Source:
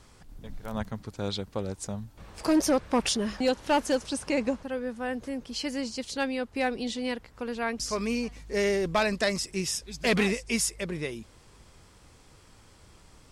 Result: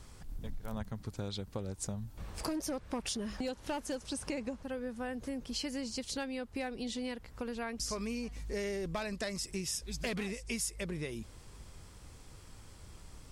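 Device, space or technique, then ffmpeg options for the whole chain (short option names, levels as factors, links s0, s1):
ASMR close-microphone chain: -af "lowshelf=f=140:g=8,acompressor=threshold=0.0224:ratio=6,highshelf=f=8300:g=7,volume=0.794"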